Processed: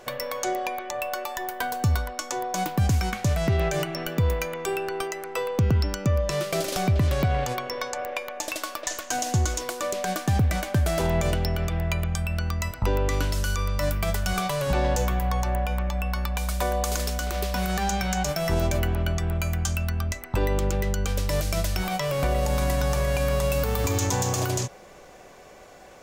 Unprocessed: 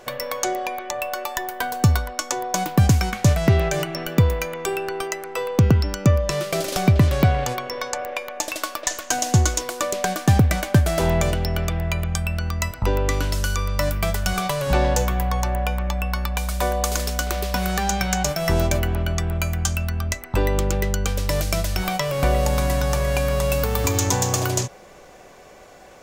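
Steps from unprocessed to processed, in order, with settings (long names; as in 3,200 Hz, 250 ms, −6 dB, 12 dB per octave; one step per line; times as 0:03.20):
brickwall limiter −12.5 dBFS, peak gain reduction 7 dB
level −2 dB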